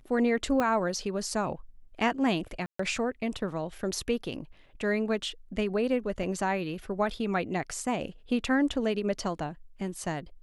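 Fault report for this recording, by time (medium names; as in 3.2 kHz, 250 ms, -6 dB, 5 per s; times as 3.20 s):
0.60 s: pop -15 dBFS
2.66–2.79 s: dropout 134 ms
6.23 s: dropout 3.5 ms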